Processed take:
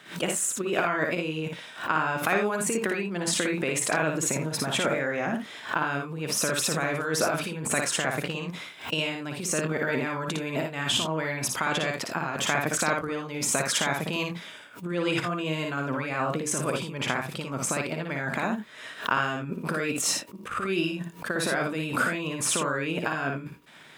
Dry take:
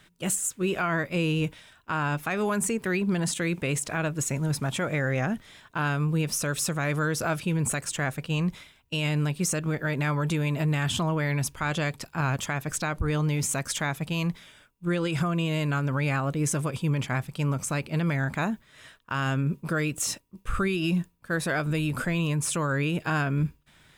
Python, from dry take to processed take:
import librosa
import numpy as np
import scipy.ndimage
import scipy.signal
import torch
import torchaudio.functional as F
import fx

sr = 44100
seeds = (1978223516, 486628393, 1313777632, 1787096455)

y = fx.over_compress(x, sr, threshold_db=-29.0, ratio=-0.5)
y = scipy.signal.sosfilt(scipy.signal.butter(2, 260.0, 'highpass', fs=sr, output='sos'), y)
y = fx.high_shelf(y, sr, hz=5400.0, db=-8.0)
y = fx.echo_multitap(y, sr, ms=(57, 81), db=(-3.5, -11.5))
y = fx.pre_swell(y, sr, db_per_s=140.0)
y = y * 10.0 ** (4.5 / 20.0)